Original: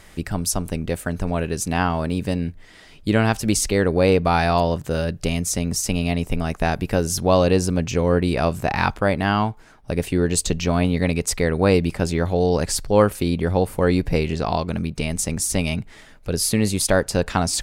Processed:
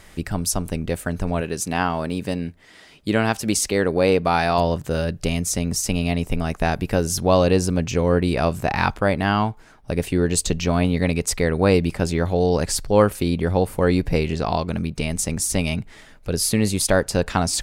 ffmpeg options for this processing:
-filter_complex "[0:a]asettb=1/sr,asplit=3[a][b][c];[a]atrim=end=1.414[d];[b]atrim=start=1.41:end=4.58,asetpts=PTS-STARTPTS,afade=t=in:d=0.004:c=qsin,afade=t=out:st=3.166:d=0.004:c=qsin,highpass=f=170:p=1[e];[c]atrim=start=4.576[f];[d][e]acrossfade=d=0.004:c1=hsin:c2=qsin[g];[g][f]acrossfade=d=0.004:c1=qsin:c2=hsin"

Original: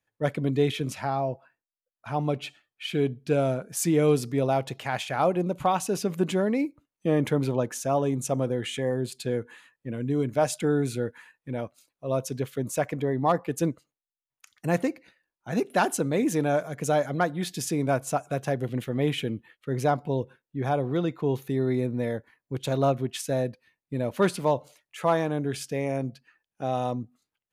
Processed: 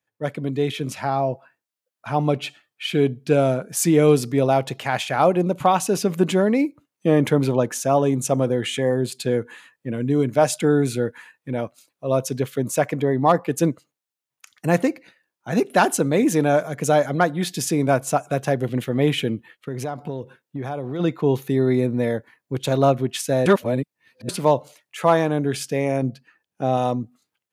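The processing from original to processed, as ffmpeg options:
-filter_complex "[0:a]asplit=3[a][b][c];[a]afade=t=out:st=19.35:d=0.02[d];[b]acompressor=threshold=-31dB:ratio=6:attack=3.2:release=140:knee=1:detection=peak,afade=t=in:st=19.35:d=0.02,afade=t=out:st=20.99:d=0.02[e];[c]afade=t=in:st=20.99:d=0.02[f];[d][e][f]amix=inputs=3:normalize=0,asettb=1/sr,asplit=3[g][h][i];[g]atrim=end=26.024[j];[h]atrim=start=26.02:end=26.77,asetpts=PTS-STARTPTS,afade=t=in:d=0.004:c=qsin,afade=t=out:st=0.746:d=0.004:c=qsin,tiltshelf=f=670:g=3[k];[i]atrim=start=26.766[l];[j][k]acrossfade=d=0.004:c1=hsin:c2=qsin[m];[m][l]acrossfade=d=0.004:c1=qsin:c2=hsin,asplit=3[n][o][p];[n]atrim=end=23.462[q];[o]atrim=start=23.458:end=24.292,asetpts=PTS-STARTPTS,areverse[r];[p]atrim=start=24.288[s];[q][r]acrossfade=d=0.004:c1=hsin:c2=hsin[t];[t][s]acrossfade=d=0.004:c1=hsin:c2=hsin,highpass=100,dynaudnorm=f=610:g=3:m=7dB"

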